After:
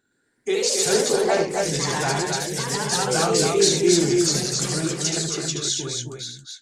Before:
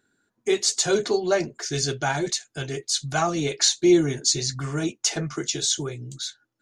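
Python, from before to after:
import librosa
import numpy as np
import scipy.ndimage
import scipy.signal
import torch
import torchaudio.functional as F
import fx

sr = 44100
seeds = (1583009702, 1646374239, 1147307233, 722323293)

y = fx.echo_pitch(x, sr, ms=120, semitones=2, count=3, db_per_echo=-3.0)
y = fx.echo_multitap(y, sr, ms=(75, 253, 273), db=(-6.0, -13.5, -4.5))
y = y * librosa.db_to_amplitude(-2.0)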